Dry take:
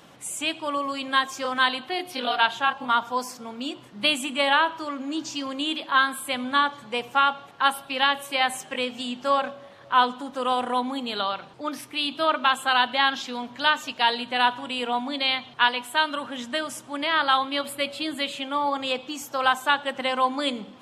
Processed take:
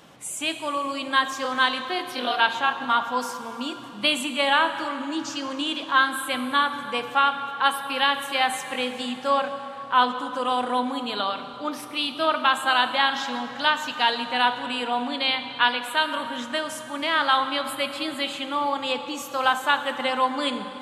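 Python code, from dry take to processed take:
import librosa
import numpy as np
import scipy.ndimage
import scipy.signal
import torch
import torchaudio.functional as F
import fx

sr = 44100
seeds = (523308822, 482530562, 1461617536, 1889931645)

y = fx.rev_plate(x, sr, seeds[0], rt60_s=3.7, hf_ratio=0.7, predelay_ms=0, drr_db=8.5)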